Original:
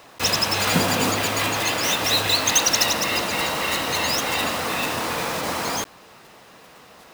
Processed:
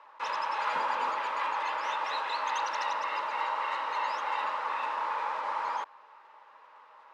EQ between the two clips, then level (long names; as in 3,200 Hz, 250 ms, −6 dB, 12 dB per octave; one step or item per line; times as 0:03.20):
Butterworth band-reject 720 Hz, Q 4.4
four-pole ladder band-pass 1,000 Hz, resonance 55%
+4.5 dB